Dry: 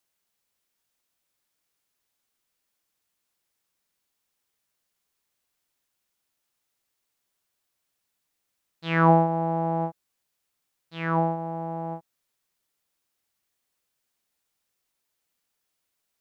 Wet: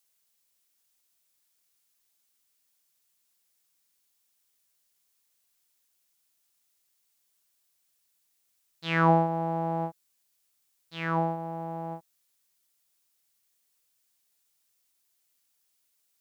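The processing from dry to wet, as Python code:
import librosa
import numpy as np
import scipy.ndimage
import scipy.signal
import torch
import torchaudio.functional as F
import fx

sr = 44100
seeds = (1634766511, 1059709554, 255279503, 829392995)

y = fx.high_shelf(x, sr, hz=3200.0, db=11.5)
y = F.gain(torch.from_numpy(y), -4.0).numpy()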